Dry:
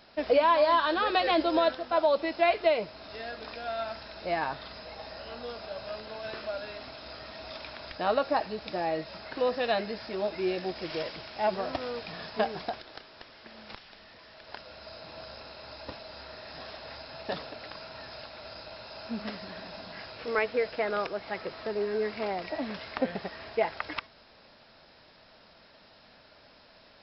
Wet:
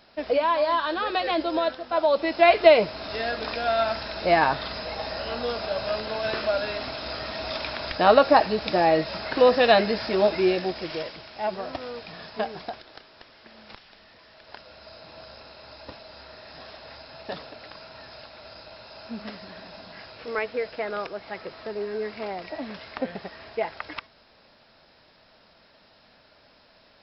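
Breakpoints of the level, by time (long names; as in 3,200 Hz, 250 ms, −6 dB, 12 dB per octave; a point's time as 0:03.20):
0:01.81 0 dB
0:02.72 +10.5 dB
0:10.27 +10.5 dB
0:11.19 −0.5 dB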